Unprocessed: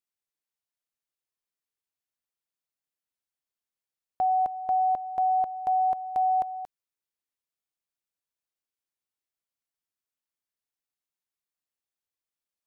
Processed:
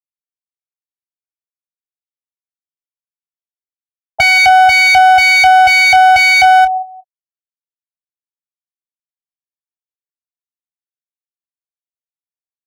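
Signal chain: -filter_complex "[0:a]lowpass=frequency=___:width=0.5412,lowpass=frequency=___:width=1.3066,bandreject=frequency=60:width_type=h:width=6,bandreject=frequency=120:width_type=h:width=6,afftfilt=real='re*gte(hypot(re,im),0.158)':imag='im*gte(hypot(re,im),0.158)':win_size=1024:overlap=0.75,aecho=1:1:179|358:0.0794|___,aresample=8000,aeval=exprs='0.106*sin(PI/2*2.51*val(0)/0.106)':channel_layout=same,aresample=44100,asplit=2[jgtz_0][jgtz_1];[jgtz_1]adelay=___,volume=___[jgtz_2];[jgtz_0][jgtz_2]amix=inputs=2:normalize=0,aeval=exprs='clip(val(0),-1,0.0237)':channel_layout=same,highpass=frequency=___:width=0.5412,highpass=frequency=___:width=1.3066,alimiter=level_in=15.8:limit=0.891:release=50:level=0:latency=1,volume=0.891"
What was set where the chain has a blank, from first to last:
1100, 1100, 0.0199, 28, 0.237, 53, 53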